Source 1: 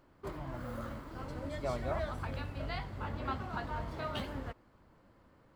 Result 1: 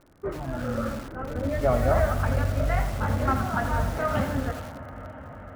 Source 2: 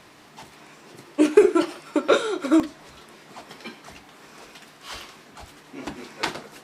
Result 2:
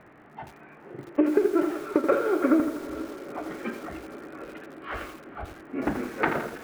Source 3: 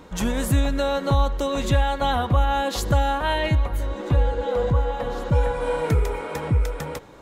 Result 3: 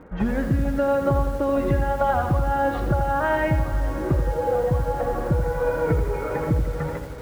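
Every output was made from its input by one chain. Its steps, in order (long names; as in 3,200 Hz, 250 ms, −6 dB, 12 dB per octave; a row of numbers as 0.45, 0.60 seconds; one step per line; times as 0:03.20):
noise reduction from a noise print of the clip's start 7 dB
low-pass filter 1,900 Hz 24 dB per octave
parametric band 1,000 Hz −7 dB 0.29 octaves
downward compressor 16 to 1, threshold −26 dBFS
surface crackle 79 per second −60 dBFS
feedback delay with all-pass diffusion 481 ms, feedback 77%, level −15.5 dB
feedback echo at a low word length 83 ms, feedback 55%, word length 8 bits, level −8 dB
normalise the peak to −9 dBFS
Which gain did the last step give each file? +13.5, +7.5, +7.5 decibels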